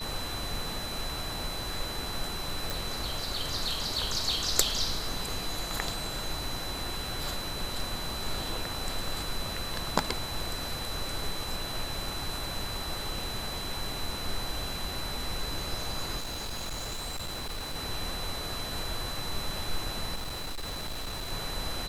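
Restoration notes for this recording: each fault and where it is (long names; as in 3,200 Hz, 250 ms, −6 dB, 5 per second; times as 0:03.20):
whistle 4,000 Hz −38 dBFS
0:02.70: click
0:16.19–0:17.76: clipping −32 dBFS
0:20.15–0:21.32: clipping −32 dBFS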